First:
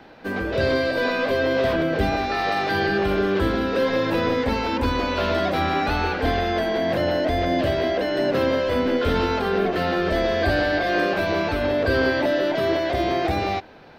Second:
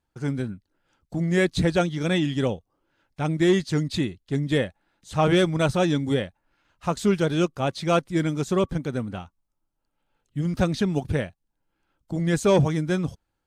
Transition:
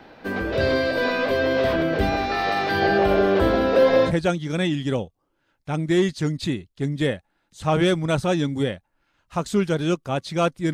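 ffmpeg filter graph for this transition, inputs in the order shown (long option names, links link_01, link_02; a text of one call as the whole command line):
ffmpeg -i cue0.wav -i cue1.wav -filter_complex "[0:a]asettb=1/sr,asplit=3[link_01][link_02][link_03];[link_01]atrim=end=2.824[link_04];[link_02]atrim=start=2.82:end=4.13,asetpts=PTS-STARTPTS,afade=type=in:duration=0.004:curve=qsin,afade=type=out:start_time=1.306:duration=0.004:curve=qsin,equalizer=frequency=640:width_type=o:width=0.76:gain=10[link_05];[link_03]atrim=start=4.126[link_06];[link_04][link_05]acrossfade=duration=0.004:curve1=hsin:curve2=qsin[link_07];[link_07][link_06]acrossfade=duration=0.004:curve1=qsin:curve2=hsin,apad=whole_dur=10.73,atrim=end=10.73,atrim=end=4.13,asetpts=PTS-STARTPTS[link_08];[1:a]atrim=start=1.56:end=8.24,asetpts=PTS-STARTPTS[link_09];[link_08][link_09]acrossfade=duration=0.08:curve1=tri:curve2=tri" out.wav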